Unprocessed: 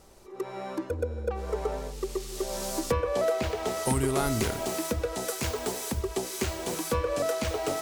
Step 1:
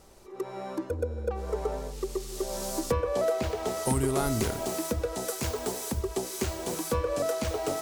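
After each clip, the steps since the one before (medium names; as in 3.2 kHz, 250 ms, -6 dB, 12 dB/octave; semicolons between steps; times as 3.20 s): dynamic bell 2.4 kHz, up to -4 dB, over -48 dBFS, Q 0.76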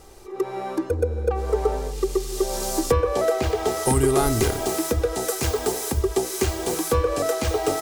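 comb 2.5 ms, depth 43%; trim +6.5 dB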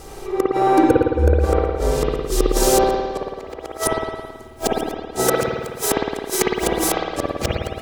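inverted gate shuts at -13 dBFS, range -38 dB; spring tank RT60 1.5 s, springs 54 ms, chirp 65 ms, DRR -3.5 dB; trim +8.5 dB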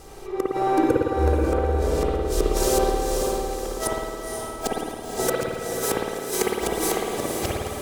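echo that smears into a reverb 510 ms, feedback 49%, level -4 dB; trim -6 dB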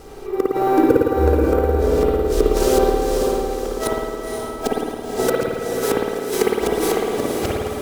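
small resonant body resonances 260/430/1400 Hz, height 6 dB, ringing for 35 ms; in parallel at -5.5 dB: sample-rate reducer 13 kHz, jitter 0%; on the sum: trim -1 dB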